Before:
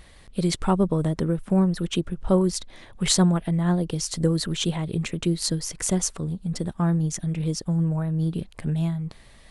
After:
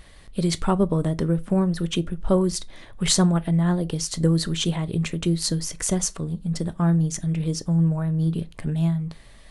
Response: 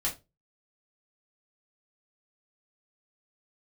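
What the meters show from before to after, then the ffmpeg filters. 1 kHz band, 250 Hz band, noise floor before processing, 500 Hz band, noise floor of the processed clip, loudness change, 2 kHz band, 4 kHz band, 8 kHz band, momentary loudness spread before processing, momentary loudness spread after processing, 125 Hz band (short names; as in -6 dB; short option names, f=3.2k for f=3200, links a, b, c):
+0.5 dB, +1.0 dB, -50 dBFS, +0.5 dB, -47 dBFS, +1.0 dB, +1.0 dB, +1.0 dB, +1.0 dB, 7 LU, 7 LU, +2.0 dB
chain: -filter_complex "[0:a]asplit=2[a][b];[1:a]atrim=start_sample=2205[c];[b][c]afir=irnorm=-1:irlink=0,volume=-17.5dB[d];[a][d]amix=inputs=2:normalize=0"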